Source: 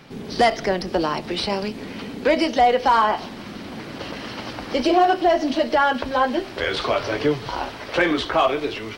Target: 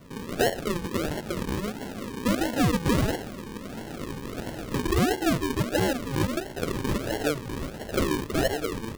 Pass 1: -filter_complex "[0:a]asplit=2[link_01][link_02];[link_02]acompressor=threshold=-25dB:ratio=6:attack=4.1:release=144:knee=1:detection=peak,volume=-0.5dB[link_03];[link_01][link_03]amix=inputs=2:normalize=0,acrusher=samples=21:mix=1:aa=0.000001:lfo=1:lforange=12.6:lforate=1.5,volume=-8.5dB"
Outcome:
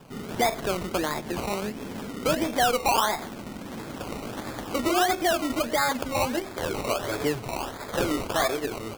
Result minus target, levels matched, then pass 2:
sample-and-hold swept by an LFO: distortion −24 dB
-filter_complex "[0:a]asplit=2[link_01][link_02];[link_02]acompressor=threshold=-25dB:ratio=6:attack=4.1:release=144:knee=1:detection=peak,volume=-0.5dB[link_03];[link_01][link_03]amix=inputs=2:normalize=0,acrusher=samples=51:mix=1:aa=0.000001:lfo=1:lforange=30.6:lforate=1.5,volume=-8.5dB"

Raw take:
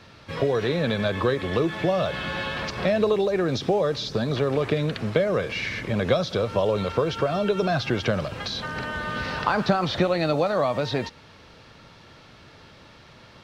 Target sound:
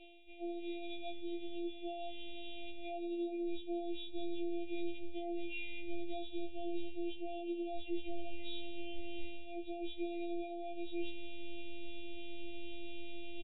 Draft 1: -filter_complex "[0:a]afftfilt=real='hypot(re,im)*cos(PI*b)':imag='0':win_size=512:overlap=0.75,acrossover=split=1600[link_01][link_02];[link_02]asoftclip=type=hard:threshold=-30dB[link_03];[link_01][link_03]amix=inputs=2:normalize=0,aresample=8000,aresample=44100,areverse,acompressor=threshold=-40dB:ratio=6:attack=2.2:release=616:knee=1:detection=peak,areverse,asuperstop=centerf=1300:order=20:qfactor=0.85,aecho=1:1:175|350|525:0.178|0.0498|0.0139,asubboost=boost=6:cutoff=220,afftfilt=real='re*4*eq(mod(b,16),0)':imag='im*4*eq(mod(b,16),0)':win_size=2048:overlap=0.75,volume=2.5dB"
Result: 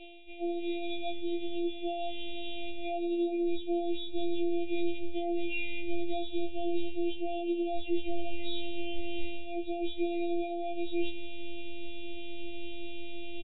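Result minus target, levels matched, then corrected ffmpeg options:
hard clipping: distortion +20 dB; downward compressor: peak gain reduction −8.5 dB
-filter_complex "[0:a]afftfilt=real='hypot(re,im)*cos(PI*b)':imag='0':win_size=512:overlap=0.75,acrossover=split=1600[link_01][link_02];[link_02]asoftclip=type=hard:threshold=-22.5dB[link_03];[link_01][link_03]amix=inputs=2:normalize=0,aresample=8000,aresample=44100,areverse,acompressor=threshold=-50dB:ratio=6:attack=2.2:release=616:knee=1:detection=peak,areverse,asuperstop=centerf=1300:order=20:qfactor=0.85,aecho=1:1:175|350|525:0.178|0.0498|0.0139,asubboost=boost=6:cutoff=220,afftfilt=real='re*4*eq(mod(b,16),0)':imag='im*4*eq(mod(b,16),0)':win_size=2048:overlap=0.75,volume=2.5dB"

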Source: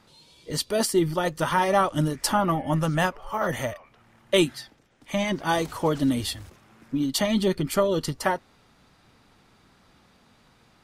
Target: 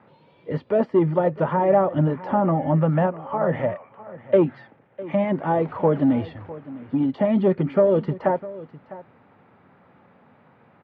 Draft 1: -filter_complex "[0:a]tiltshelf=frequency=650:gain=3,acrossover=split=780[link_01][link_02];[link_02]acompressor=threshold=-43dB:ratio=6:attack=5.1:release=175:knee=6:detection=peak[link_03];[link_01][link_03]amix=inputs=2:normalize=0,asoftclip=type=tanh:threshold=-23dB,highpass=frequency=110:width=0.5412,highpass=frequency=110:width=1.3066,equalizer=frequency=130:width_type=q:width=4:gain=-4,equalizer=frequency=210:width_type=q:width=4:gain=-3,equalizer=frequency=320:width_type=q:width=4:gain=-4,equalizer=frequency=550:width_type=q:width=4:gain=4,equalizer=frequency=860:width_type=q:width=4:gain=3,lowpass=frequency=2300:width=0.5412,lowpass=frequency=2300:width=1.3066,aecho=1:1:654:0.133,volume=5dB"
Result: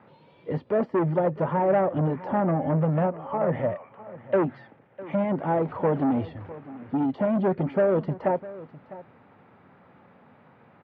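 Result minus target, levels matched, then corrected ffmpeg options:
soft clipping: distortion +13 dB; downward compressor: peak gain reduction +6 dB
-filter_complex "[0:a]tiltshelf=frequency=650:gain=3,acrossover=split=780[link_01][link_02];[link_02]acompressor=threshold=-36dB:ratio=6:attack=5.1:release=175:knee=6:detection=peak[link_03];[link_01][link_03]amix=inputs=2:normalize=0,asoftclip=type=tanh:threshold=-12dB,highpass=frequency=110:width=0.5412,highpass=frequency=110:width=1.3066,equalizer=frequency=130:width_type=q:width=4:gain=-4,equalizer=frequency=210:width_type=q:width=4:gain=-3,equalizer=frequency=320:width_type=q:width=4:gain=-4,equalizer=frequency=550:width_type=q:width=4:gain=4,equalizer=frequency=860:width_type=q:width=4:gain=3,lowpass=frequency=2300:width=0.5412,lowpass=frequency=2300:width=1.3066,aecho=1:1:654:0.133,volume=5dB"

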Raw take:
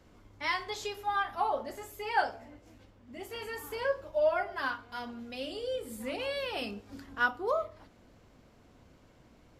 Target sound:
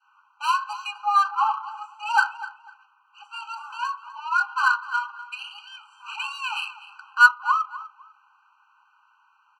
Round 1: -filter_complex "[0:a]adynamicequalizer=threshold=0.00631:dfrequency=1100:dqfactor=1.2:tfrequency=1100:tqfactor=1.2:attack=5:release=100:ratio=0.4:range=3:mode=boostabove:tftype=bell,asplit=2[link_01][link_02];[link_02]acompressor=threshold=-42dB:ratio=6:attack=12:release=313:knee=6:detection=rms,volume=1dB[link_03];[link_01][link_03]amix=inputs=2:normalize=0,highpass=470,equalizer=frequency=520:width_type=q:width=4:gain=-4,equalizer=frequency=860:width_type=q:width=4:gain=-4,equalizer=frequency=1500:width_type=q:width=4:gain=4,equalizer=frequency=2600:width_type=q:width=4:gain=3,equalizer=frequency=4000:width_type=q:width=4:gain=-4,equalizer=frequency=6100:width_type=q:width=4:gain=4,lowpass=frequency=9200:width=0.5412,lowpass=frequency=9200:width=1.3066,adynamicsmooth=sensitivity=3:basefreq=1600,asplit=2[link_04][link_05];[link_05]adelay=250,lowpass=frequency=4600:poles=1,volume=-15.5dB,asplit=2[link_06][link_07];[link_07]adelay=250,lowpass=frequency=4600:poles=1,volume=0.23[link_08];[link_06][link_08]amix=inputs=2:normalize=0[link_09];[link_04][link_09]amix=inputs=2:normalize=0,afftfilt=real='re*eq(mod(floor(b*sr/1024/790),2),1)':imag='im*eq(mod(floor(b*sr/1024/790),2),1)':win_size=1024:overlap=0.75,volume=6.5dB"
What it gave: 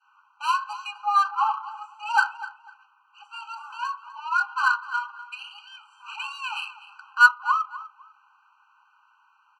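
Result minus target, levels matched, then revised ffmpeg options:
downward compressor: peak gain reduction +6.5 dB
-filter_complex "[0:a]adynamicequalizer=threshold=0.00631:dfrequency=1100:dqfactor=1.2:tfrequency=1100:tqfactor=1.2:attack=5:release=100:ratio=0.4:range=3:mode=boostabove:tftype=bell,asplit=2[link_01][link_02];[link_02]acompressor=threshold=-34.5dB:ratio=6:attack=12:release=313:knee=6:detection=rms,volume=1dB[link_03];[link_01][link_03]amix=inputs=2:normalize=0,highpass=470,equalizer=frequency=520:width_type=q:width=4:gain=-4,equalizer=frequency=860:width_type=q:width=4:gain=-4,equalizer=frequency=1500:width_type=q:width=4:gain=4,equalizer=frequency=2600:width_type=q:width=4:gain=3,equalizer=frequency=4000:width_type=q:width=4:gain=-4,equalizer=frequency=6100:width_type=q:width=4:gain=4,lowpass=frequency=9200:width=0.5412,lowpass=frequency=9200:width=1.3066,adynamicsmooth=sensitivity=3:basefreq=1600,asplit=2[link_04][link_05];[link_05]adelay=250,lowpass=frequency=4600:poles=1,volume=-15.5dB,asplit=2[link_06][link_07];[link_07]adelay=250,lowpass=frequency=4600:poles=1,volume=0.23[link_08];[link_06][link_08]amix=inputs=2:normalize=0[link_09];[link_04][link_09]amix=inputs=2:normalize=0,afftfilt=real='re*eq(mod(floor(b*sr/1024/790),2),1)':imag='im*eq(mod(floor(b*sr/1024/790),2),1)':win_size=1024:overlap=0.75,volume=6.5dB"

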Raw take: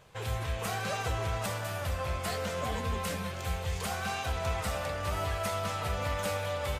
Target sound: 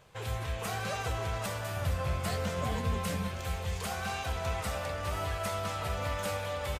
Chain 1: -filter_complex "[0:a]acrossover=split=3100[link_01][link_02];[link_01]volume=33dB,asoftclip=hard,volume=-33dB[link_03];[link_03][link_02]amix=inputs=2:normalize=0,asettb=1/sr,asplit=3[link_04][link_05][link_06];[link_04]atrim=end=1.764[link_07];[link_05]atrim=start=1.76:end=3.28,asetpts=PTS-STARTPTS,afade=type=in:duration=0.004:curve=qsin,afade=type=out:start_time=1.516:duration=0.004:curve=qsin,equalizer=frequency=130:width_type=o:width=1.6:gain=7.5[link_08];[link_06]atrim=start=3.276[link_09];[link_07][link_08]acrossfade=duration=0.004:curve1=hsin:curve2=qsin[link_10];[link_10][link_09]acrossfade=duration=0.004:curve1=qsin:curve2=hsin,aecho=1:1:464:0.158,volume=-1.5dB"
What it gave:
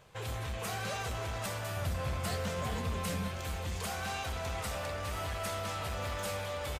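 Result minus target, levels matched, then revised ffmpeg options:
gain into a clipping stage and back: distortion +37 dB
-filter_complex "[0:a]acrossover=split=3100[link_01][link_02];[link_01]volume=22dB,asoftclip=hard,volume=-22dB[link_03];[link_03][link_02]amix=inputs=2:normalize=0,asettb=1/sr,asplit=3[link_04][link_05][link_06];[link_04]atrim=end=1.764[link_07];[link_05]atrim=start=1.76:end=3.28,asetpts=PTS-STARTPTS,afade=type=in:duration=0.004:curve=qsin,afade=type=out:start_time=1.516:duration=0.004:curve=qsin,equalizer=frequency=130:width_type=o:width=1.6:gain=7.5[link_08];[link_06]atrim=start=3.276[link_09];[link_07][link_08]acrossfade=duration=0.004:curve1=hsin:curve2=qsin[link_10];[link_10][link_09]acrossfade=duration=0.004:curve1=qsin:curve2=hsin,aecho=1:1:464:0.158,volume=-1.5dB"

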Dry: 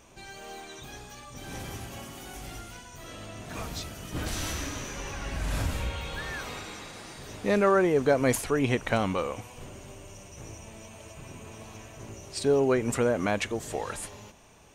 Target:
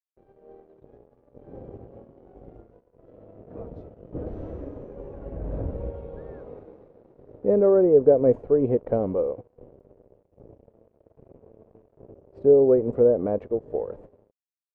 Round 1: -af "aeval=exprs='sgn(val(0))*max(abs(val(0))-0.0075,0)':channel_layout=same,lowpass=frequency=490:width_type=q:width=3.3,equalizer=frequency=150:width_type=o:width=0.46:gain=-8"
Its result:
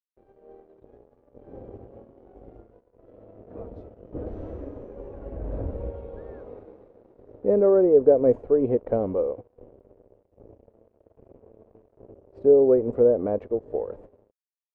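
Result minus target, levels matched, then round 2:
125 Hz band −2.5 dB
-af "aeval=exprs='sgn(val(0))*max(abs(val(0))-0.0075,0)':channel_layout=same,lowpass=frequency=490:width_type=q:width=3.3"

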